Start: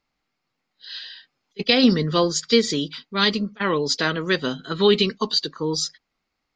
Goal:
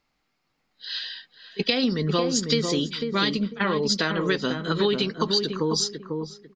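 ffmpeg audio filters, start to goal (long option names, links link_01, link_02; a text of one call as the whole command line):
ffmpeg -i in.wav -filter_complex "[0:a]acompressor=threshold=-24dB:ratio=6,asplit=2[link_01][link_02];[link_02]adelay=497,lowpass=frequency=870:poles=1,volume=-4dB,asplit=2[link_03][link_04];[link_04]adelay=497,lowpass=frequency=870:poles=1,volume=0.27,asplit=2[link_05][link_06];[link_06]adelay=497,lowpass=frequency=870:poles=1,volume=0.27,asplit=2[link_07][link_08];[link_08]adelay=497,lowpass=frequency=870:poles=1,volume=0.27[link_09];[link_01][link_03][link_05][link_07][link_09]amix=inputs=5:normalize=0,volume=3.5dB" out.wav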